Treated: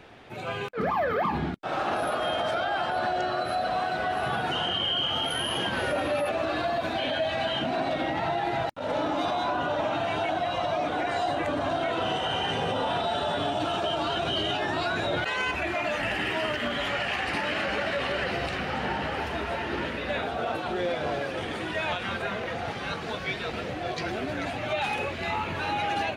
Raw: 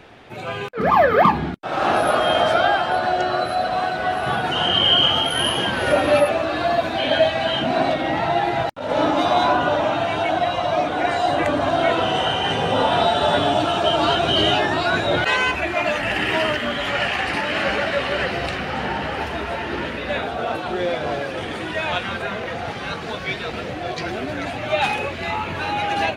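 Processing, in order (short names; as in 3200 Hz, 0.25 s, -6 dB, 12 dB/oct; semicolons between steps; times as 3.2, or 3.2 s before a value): limiter -15 dBFS, peak gain reduction 9.5 dB; gain -4.5 dB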